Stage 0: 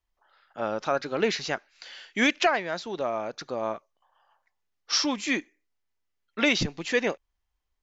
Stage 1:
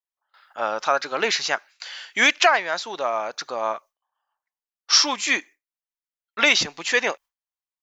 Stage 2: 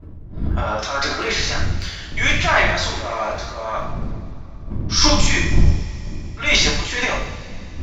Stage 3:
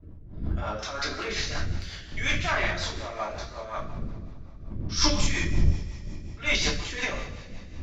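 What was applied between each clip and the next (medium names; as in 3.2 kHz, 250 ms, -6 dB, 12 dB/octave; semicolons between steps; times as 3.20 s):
peaking EQ 980 Hz +8.5 dB 1.9 oct; gate with hold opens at -47 dBFS; tilt EQ +3.5 dB/octave
wind noise 85 Hz -25 dBFS; transient shaper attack -9 dB, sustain +12 dB; two-slope reverb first 0.67 s, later 3.4 s, from -19 dB, DRR -5.5 dB; trim -5.5 dB
rotary cabinet horn 5.5 Hz; trim -7 dB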